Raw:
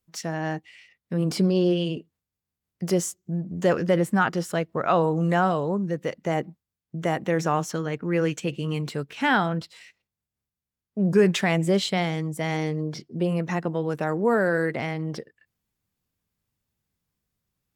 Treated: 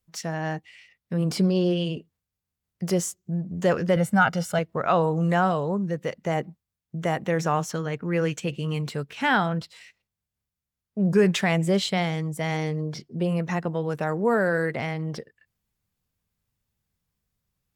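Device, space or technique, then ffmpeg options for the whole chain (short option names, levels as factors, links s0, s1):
low shelf boost with a cut just above: -filter_complex "[0:a]lowshelf=f=72:g=6,equalizer=f=310:t=o:w=0.56:g=-4.5,asettb=1/sr,asplit=3[s0][s1][s2];[s0]atrim=end=3.964[s3];[s1]atrim=start=3.96:end=4.59,asetpts=PTS-STARTPTS,afade=t=in:d=0.004:c=qsin,afade=t=out:st=0.626:d=0.004:c=qsin,aecho=1:1:1.4:0.63,atrim=end_sample=27783[s4];[s2]atrim=start=4.586[s5];[s3][s4]acrossfade=d=0.004:c1=hsin:c2=qsin[s6];[s6][s5]acrossfade=d=0.004:c1=qsin:c2=hsin"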